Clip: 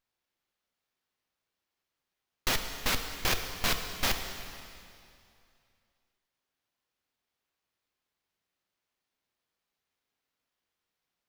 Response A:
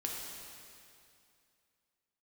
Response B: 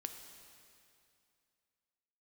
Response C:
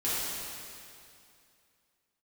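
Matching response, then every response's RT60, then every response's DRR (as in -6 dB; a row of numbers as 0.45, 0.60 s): B; 2.5, 2.5, 2.5 s; -2.0, 5.5, -11.5 dB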